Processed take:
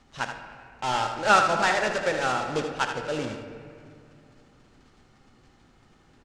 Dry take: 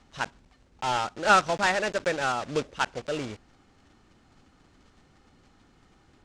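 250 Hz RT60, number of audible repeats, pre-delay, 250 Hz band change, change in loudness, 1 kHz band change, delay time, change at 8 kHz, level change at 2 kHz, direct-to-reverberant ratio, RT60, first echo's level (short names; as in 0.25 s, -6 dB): 2.9 s, 1, 4 ms, +1.5 dB, +1.5 dB, +2.0 dB, 78 ms, +1.0 dB, +1.5 dB, 3.5 dB, 2.3 s, -8.0 dB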